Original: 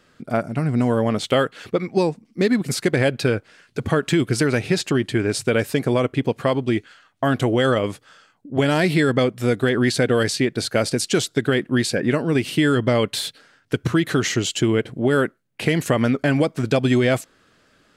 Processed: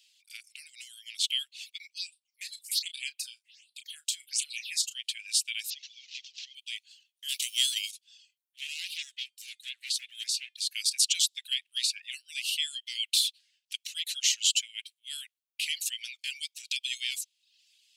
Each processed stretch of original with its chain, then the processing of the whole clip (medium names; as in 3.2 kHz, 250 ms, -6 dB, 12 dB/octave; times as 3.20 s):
1.98–4.95 s: phase shifter stages 6, 1.3 Hz, lowest notch 140–1900 Hz + doubling 33 ms -9 dB
5.70–6.55 s: one-bit delta coder 32 kbps, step -28 dBFS + high-pass 580 Hz 6 dB/octave + compression, threshold -32 dBFS
7.28–7.90 s: formants flattened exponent 0.6 + high-pass 1.4 kHz 24 dB/octave
8.56–10.68 s: bass shelf 280 Hz +7.5 dB + feedback comb 350 Hz, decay 0.23 s, mix 50% + loudspeaker Doppler distortion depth 0.46 ms
11.51–12.02 s: treble shelf 5 kHz -6 dB + three bands compressed up and down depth 100%
whole clip: reverb removal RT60 0.6 s; steep high-pass 2.6 kHz 48 dB/octave; trim +2 dB